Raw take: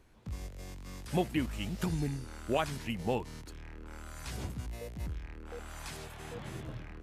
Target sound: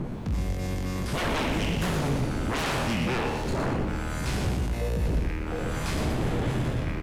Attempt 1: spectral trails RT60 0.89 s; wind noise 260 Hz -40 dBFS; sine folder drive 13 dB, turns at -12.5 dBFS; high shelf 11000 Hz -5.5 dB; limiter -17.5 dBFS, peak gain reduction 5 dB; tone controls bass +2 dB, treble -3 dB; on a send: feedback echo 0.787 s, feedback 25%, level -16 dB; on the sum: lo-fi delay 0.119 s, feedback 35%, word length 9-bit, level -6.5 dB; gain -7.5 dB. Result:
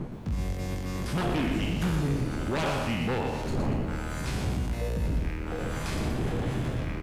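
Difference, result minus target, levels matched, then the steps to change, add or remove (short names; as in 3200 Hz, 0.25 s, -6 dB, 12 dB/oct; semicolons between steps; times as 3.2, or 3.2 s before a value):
sine folder: distortion -8 dB
change: sine folder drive 19 dB, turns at -12.5 dBFS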